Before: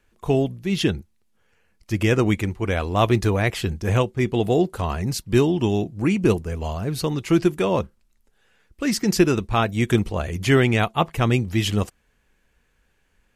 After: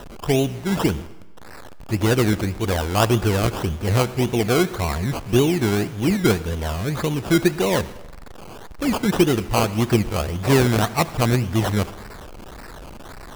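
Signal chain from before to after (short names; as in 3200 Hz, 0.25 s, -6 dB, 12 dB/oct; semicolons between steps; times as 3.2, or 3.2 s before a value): zero-crossing step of -32 dBFS; decimation with a swept rate 19×, swing 60% 1.8 Hz; on a send: reverb RT60 1.1 s, pre-delay 63 ms, DRR 16.5 dB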